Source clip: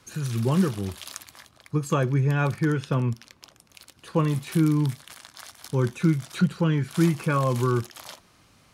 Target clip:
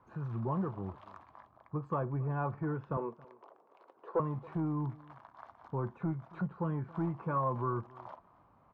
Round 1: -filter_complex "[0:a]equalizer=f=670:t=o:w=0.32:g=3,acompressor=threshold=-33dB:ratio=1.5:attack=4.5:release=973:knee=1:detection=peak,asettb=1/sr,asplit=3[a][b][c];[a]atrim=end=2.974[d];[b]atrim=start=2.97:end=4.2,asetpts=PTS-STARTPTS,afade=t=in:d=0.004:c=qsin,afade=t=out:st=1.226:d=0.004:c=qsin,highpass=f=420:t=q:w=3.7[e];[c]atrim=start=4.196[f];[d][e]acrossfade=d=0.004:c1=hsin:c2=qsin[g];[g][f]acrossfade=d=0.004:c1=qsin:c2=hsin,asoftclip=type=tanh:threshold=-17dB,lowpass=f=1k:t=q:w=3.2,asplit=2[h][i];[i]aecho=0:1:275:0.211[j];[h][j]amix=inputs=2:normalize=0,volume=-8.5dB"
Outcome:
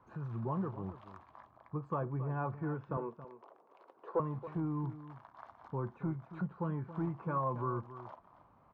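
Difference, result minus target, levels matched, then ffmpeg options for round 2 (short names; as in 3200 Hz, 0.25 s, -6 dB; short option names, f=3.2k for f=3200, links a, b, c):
echo-to-direct +8.5 dB; compressor: peak gain reduction +2.5 dB
-filter_complex "[0:a]equalizer=f=670:t=o:w=0.32:g=3,acompressor=threshold=-25dB:ratio=1.5:attack=4.5:release=973:knee=1:detection=peak,asettb=1/sr,asplit=3[a][b][c];[a]atrim=end=2.974[d];[b]atrim=start=2.97:end=4.2,asetpts=PTS-STARTPTS,afade=t=in:d=0.004:c=qsin,afade=t=out:st=1.226:d=0.004:c=qsin,highpass=f=420:t=q:w=3.7[e];[c]atrim=start=4.196[f];[d][e]acrossfade=d=0.004:c1=hsin:c2=qsin[g];[g][f]acrossfade=d=0.004:c1=qsin:c2=hsin,asoftclip=type=tanh:threshold=-17dB,lowpass=f=1k:t=q:w=3.2,asplit=2[h][i];[i]aecho=0:1:275:0.0794[j];[h][j]amix=inputs=2:normalize=0,volume=-8.5dB"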